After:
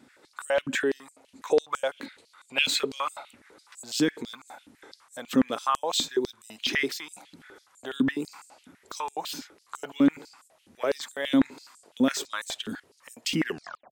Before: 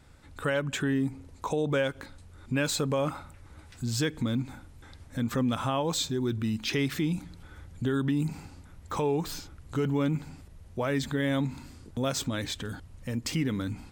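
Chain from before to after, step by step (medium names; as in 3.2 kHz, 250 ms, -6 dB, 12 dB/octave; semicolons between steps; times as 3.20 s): tape stop on the ending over 0.48 s; time-frequency box 1.98–3.35 s, 1.9–4.7 kHz +6 dB; step-sequenced high-pass 12 Hz 250–7800 Hz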